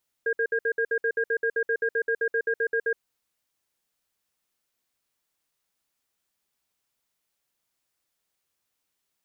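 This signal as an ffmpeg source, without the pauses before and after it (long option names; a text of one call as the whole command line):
ffmpeg -f lavfi -i "aevalsrc='0.0596*(sin(2*PI*456*t)+sin(2*PI*1620*t))*clip(min(mod(t,0.13),0.07-mod(t,0.13))/0.005,0,1)':duration=2.72:sample_rate=44100" out.wav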